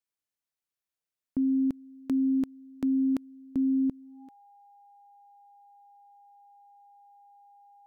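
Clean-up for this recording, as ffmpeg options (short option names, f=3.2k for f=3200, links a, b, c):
-af "bandreject=f=810:w=30"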